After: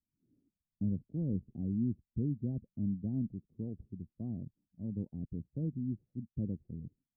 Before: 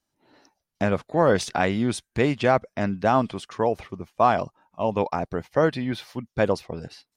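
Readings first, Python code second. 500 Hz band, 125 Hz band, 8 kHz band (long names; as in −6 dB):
−28.5 dB, −6.0 dB, below −40 dB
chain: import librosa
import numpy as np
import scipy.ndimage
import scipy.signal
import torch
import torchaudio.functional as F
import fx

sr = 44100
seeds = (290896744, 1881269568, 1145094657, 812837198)

y = scipy.signal.sosfilt(scipy.signal.cheby2(4, 80, 1500.0, 'lowpass', fs=sr, output='sos'), x)
y = F.gain(torch.from_numpy(y), -6.0).numpy()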